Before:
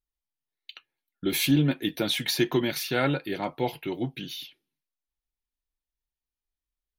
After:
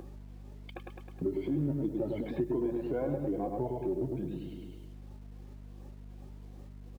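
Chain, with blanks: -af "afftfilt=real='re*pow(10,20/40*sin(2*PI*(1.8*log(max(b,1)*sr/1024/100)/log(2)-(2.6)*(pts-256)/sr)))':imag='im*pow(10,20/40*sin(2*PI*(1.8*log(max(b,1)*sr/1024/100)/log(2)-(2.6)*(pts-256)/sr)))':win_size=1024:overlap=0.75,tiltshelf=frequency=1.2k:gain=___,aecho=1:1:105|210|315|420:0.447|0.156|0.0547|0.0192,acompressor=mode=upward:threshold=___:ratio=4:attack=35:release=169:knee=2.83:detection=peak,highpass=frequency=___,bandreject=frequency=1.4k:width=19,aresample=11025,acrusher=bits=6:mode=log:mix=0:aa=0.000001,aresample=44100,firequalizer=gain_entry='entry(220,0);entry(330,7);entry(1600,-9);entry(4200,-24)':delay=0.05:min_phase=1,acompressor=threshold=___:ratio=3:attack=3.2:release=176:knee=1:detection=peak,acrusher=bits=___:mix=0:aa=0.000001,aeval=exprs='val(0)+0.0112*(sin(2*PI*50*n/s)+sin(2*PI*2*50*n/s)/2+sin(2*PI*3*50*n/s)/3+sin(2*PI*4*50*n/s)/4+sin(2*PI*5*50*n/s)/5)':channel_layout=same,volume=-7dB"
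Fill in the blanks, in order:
7.5, -29dB, 92, -25dB, 9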